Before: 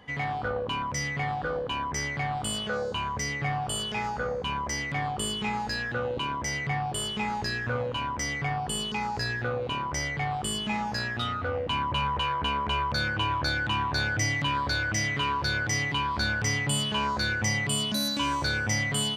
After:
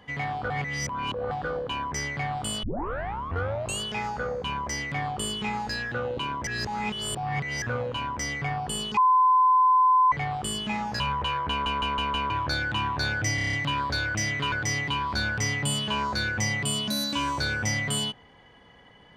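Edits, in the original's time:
0.5–1.31 reverse
2.63 tape start 1.18 s
6.47–7.62 reverse
8.97–10.12 bleep 1020 Hz -16 dBFS
11–11.95 cut
12.45 stutter in place 0.16 s, 5 plays
14.3 stutter 0.03 s, 7 plays
15.29–15.56 cut

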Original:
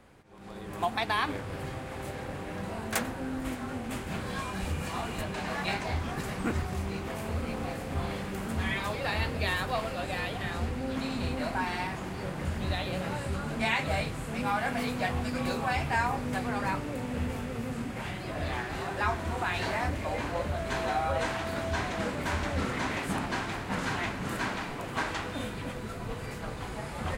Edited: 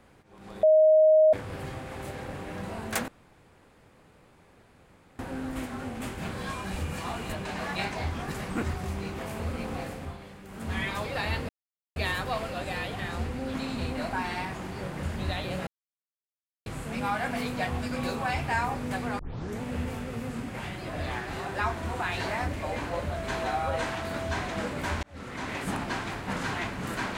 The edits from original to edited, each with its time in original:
0.63–1.33 bleep 625 Hz -15 dBFS
3.08 insert room tone 2.11 s
7.77–8.66 dip -11 dB, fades 0.29 s
9.38 insert silence 0.47 s
13.09–14.08 mute
16.61 tape start 0.42 s
22.45–23.06 fade in

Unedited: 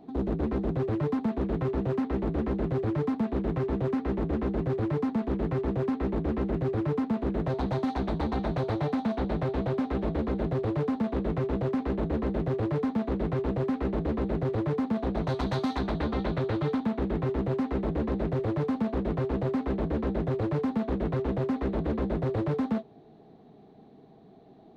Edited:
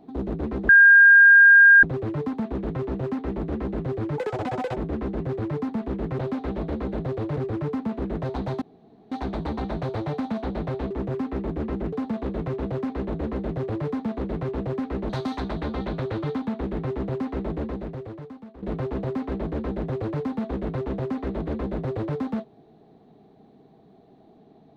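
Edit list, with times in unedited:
0.69 add tone 1610 Hz -8.5 dBFS 1.14 s
3.04–4.17 speed 193%
5.59–6.61 swap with 9.65–10.83
7.86 insert room tone 0.50 s
14–15.48 cut
17.95–19.01 fade out quadratic, to -16 dB

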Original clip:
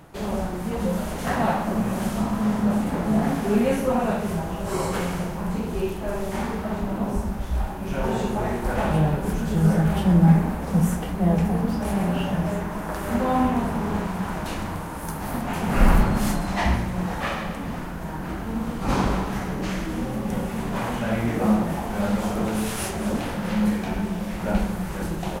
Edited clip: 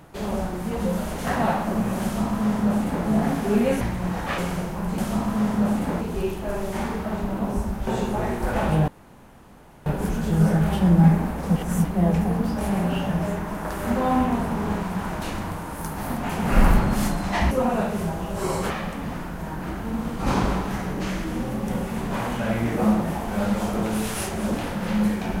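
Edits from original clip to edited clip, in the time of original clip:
2.03–3.06 copy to 5.6
3.81–5 swap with 16.75–17.32
7.46–8.09 cut
9.1 insert room tone 0.98 s
10.8–11.09 reverse

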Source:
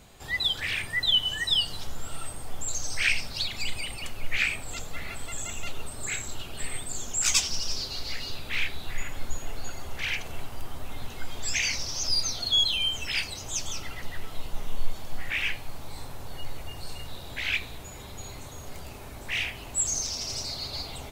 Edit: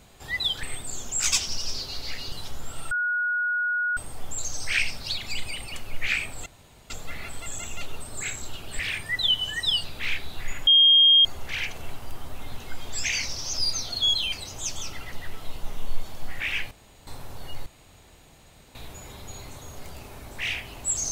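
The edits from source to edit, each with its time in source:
0.63–1.68 swap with 6.65–8.34
2.27 add tone 1450 Hz -22.5 dBFS 1.06 s
4.76 insert room tone 0.44 s
9.17–9.75 bleep 3230 Hz -12.5 dBFS
12.82–13.22 cut
15.61–15.97 room tone
16.56–17.65 room tone

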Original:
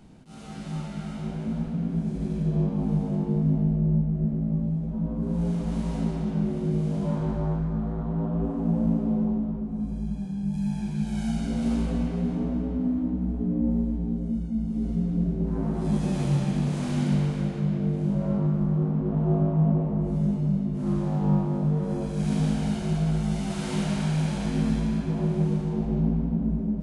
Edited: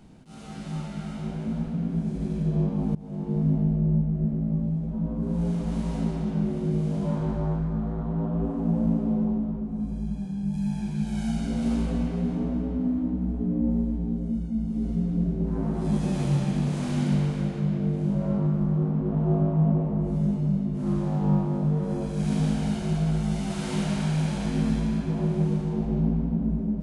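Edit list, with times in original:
2.95–3.43 fade in, from -22 dB

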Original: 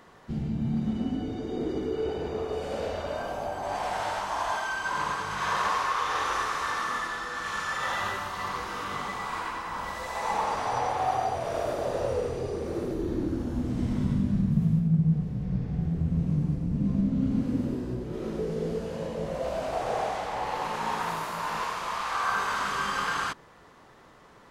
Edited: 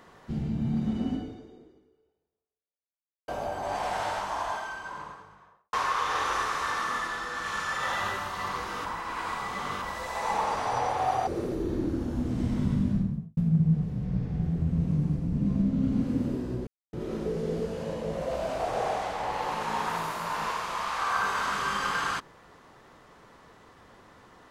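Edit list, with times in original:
1.14–3.28 fade out exponential
3.99–5.73 studio fade out
8.85–9.82 reverse
11.27–12.66 cut
14.27–14.76 studio fade out
18.06 insert silence 0.26 s

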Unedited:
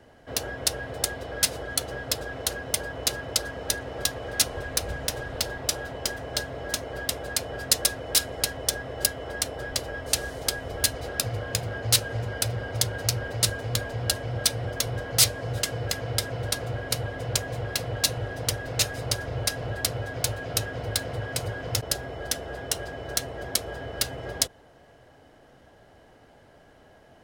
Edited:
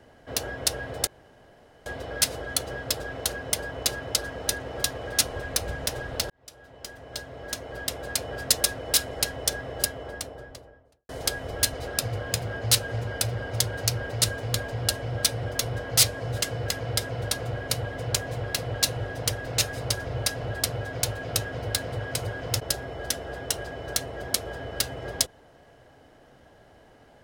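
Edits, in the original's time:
1.07 insert room tone 0.79 s
5.51–7.49 fade in
8.84–10.3 studio fade out

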